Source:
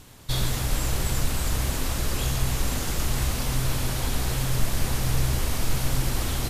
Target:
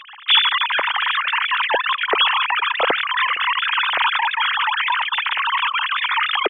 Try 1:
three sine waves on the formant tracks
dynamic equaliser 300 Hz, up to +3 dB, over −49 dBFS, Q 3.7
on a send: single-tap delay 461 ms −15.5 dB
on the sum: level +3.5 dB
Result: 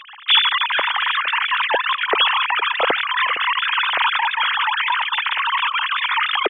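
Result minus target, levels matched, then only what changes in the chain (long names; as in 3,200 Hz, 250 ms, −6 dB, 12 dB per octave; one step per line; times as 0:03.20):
echo-to-direct +9 dB
change: single-tap delay 461 ms −24.5 dB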